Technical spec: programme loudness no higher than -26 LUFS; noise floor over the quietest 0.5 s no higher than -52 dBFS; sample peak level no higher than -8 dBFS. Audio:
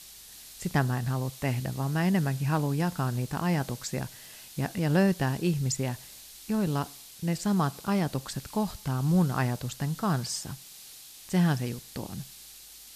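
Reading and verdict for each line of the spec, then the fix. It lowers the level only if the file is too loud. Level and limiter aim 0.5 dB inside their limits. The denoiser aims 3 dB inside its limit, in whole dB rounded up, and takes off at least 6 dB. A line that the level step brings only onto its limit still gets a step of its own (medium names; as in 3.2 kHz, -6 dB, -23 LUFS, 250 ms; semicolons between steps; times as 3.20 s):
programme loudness -29.0 LUFS: pass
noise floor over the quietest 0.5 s -49 dBFS: fail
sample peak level -10.5 dBFS: pass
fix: noise reduction 6 dB, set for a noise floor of -49 dBFS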